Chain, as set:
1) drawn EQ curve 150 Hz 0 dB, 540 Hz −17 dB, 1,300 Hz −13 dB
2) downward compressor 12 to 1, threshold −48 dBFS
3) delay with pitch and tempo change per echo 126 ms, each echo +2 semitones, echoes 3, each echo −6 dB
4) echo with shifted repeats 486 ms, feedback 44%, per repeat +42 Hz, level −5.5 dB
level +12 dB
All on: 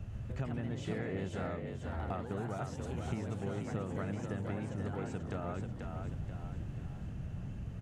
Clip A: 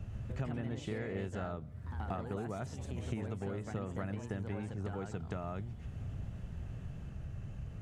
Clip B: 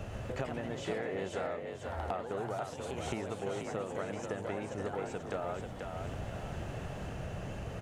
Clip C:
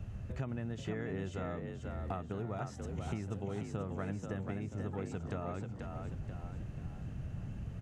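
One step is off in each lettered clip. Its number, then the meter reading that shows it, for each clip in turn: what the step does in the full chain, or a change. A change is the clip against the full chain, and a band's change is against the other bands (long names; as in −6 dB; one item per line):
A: 4, echo-to-direct ratio −4.5 dB to none audible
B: 1, 125 Hz band −9.0 dB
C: 3, change in integrated loudness −1.0 LU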